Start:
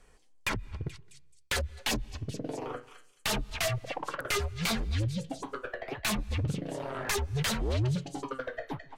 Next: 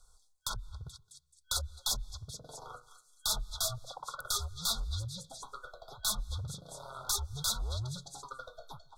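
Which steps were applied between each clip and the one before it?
FFT band-reject 1.5–3.3 kHz; amplifier tone stack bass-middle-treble 10-0-10; trim +3.5 dB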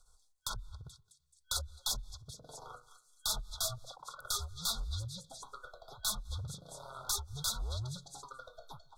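endings held to a fixed fall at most 200 dB/s; trim -2 dB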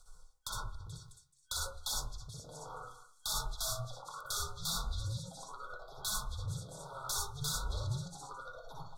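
reverse; upward compressor, threshold -45 dBFS; reverse; reverberation RT60 0.40 s, pre-delay 52 ms, DRR -4.5 dB; trim -4 dB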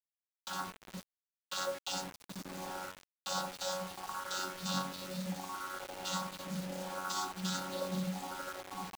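vocoder on a held chord bare fifth, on F#3; bit crusher 8-bit; trim +3 dB

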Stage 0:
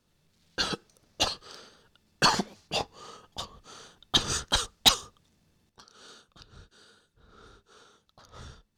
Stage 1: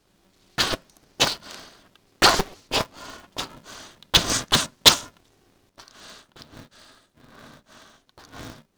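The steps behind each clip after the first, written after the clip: polarity switched at an audio rate 190 Hz; trim +6.5 dB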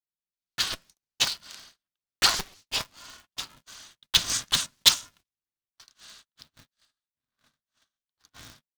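amplifier tone stack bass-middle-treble 5-5-5; gate -56 dBFS, range -31 dB; level rider gain up to 5 dB; trim -1 dB

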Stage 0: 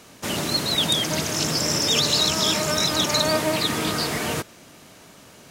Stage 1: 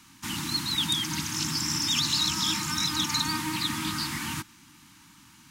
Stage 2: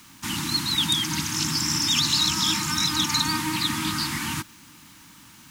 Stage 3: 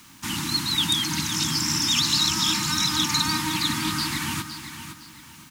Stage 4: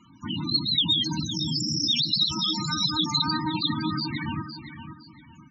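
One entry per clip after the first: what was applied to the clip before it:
elliptic band-stop 320–880 Hz, stop band 40 dB; trim -5 dB
added noise white -60 dBFS; trim +4 dB
feedback delay 512 ms, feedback 30%, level -10 dB
loudest bins only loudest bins 16; trim +1.5 dB

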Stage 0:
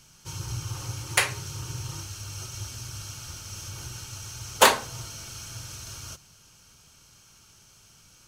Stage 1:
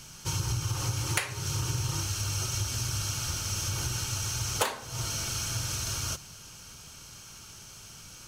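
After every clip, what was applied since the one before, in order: compression 16:1, threshold -34 dBFS, peak gain reduction 23.5 dB; trim +8 dB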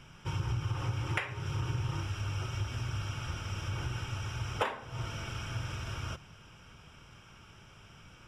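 Savitzky-Golay filter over 25 samples; trim -2 dB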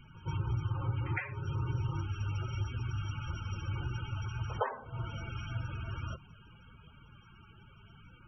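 loudest bins only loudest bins 32; pre-echo 111 ms -17.5 dB; attacks held to a fixed rise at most 410 dB/s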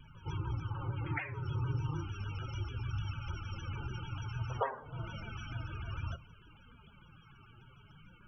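flange 0.33 Hz, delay 1 ms, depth 7.2 ms, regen +46%; FDN reverb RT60 0.65 s, high-frequency decay 0.95×, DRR 18.5 dB; vibrato with a chosen wave saw down 6.7 Hz, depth 100 cents; trim +2.5 dB

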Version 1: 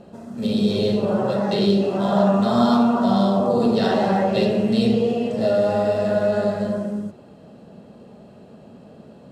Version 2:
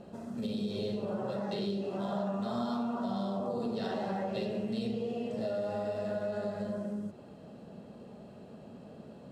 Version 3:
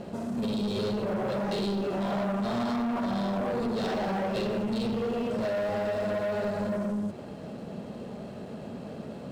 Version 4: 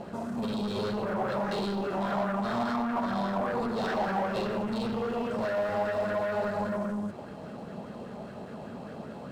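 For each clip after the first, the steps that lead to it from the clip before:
compression 3:1, threshold -30 dBFS, peak gain reduction 13 dB; trim -5 dB
waveshaping leveller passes 3; trim -1.5 dB
sweeping bell 5 Hz 800–1600 Hz +10 dB; trim -2.5 dB

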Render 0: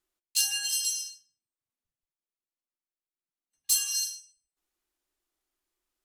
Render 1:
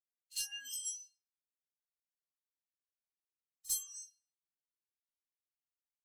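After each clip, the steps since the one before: spectral noise reduction 24 dB; rotary cabinet horn 0.8 Hz; reverse echo 49 ms -19.5 dB; trim -6.5 dB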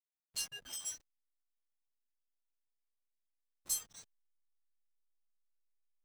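hysteresis with a dead band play -40.5 dBFS; trim +1 dB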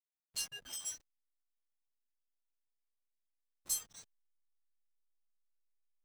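no audible change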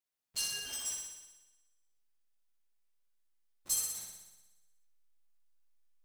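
flutter echo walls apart 10.4 m, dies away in 1.1 s; trim +2.5 dB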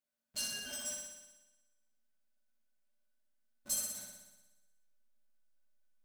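small resonant body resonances 230/590/1500 Hz, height 18 dB, ringing for 95 ms; trim -3 dB

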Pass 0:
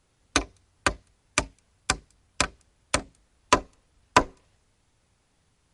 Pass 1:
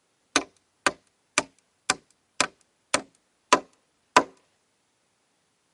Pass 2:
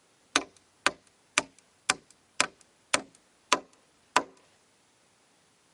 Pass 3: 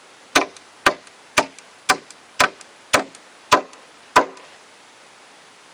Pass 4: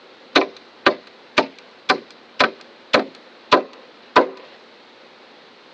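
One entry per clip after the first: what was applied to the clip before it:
high-pass 230 Hz 12 dB/octave; trim +1 dB
compression 8:1, threshold -27 dBFS, peak gain reduction 16 dB; trim +5.5 dB
overdrive pedal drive 27 dB, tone 3 kHz, clips at -1 dBFS; trim +1.5 dB
cabinet simulation 100–4500 Hz, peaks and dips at 230 Hz +9 dB, 360 Hz +7 dB, 510 Hz +7 dB, 4.1 kHz +7 dB; trim -1 dB

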